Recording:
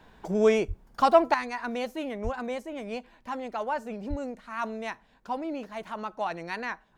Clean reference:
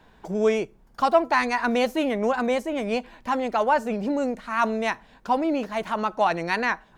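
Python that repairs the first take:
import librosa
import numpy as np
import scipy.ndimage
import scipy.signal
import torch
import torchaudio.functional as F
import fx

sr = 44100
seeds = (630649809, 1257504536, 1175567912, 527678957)

y = fx.highpass(x, sr, hz=140.0, slope=24, at=(0.67, 0.79), fade=0.02)
y = fx.highpass(y, sr, hz=140.0, slope=24, at=(2.23, 2.35), fade=0.02)
y = fx.highpass(y, sr, hz=140.0, slope=24, at=(4.09, 4.21), fade=0.02)
y = fx.fix_level(y, sr, at_s=1.34, step_db=9.5)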